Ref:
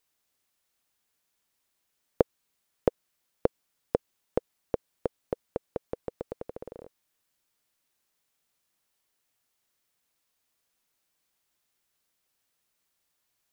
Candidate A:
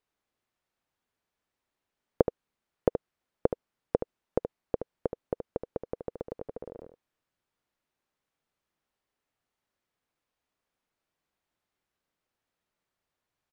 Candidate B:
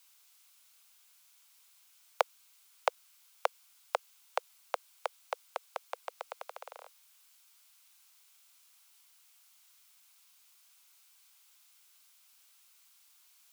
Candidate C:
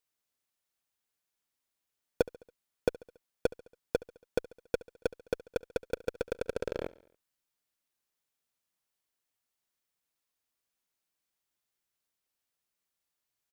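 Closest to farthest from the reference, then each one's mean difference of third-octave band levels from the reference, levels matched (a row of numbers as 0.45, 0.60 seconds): A, C, B; 2.5, 9.0, 17.0 decibels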